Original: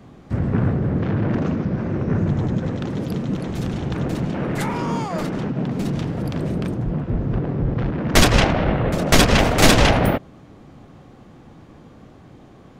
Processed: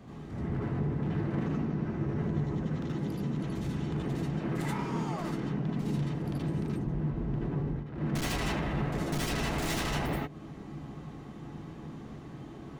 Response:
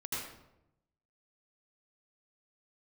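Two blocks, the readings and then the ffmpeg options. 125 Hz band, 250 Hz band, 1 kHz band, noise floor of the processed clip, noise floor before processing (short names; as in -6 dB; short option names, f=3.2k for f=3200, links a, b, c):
-10.5 dB, -10.5 dB, -14.0 dB, -45 dBFS, -46 dBFS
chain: -filter_complex "[0:a]volume=20.5dB,asoftclip=hard,volume=-20.5dB,alimiter=level_in=5.5dB:limit=-24dB:level=0:latency=1:release=202,volume=-5.5dB[a];[1:a]atrim=start_sample=2205,atrim=end_sample=4410[b];[a][b]afir=irnorm=-1:irlink=0"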